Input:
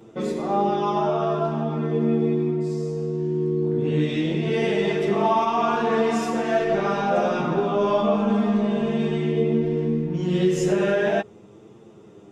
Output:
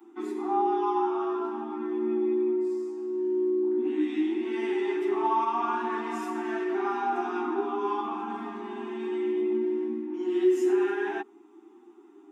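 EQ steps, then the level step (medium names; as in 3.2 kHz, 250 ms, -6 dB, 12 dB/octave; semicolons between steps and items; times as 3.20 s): steep high-pass 250 Hz 96 dB/octave; elliptic band-stop 380–770 Hz, stop band 40 dB; peaking EQ 4.8 kHz -15 dB 2.4 oct; 0.0 dB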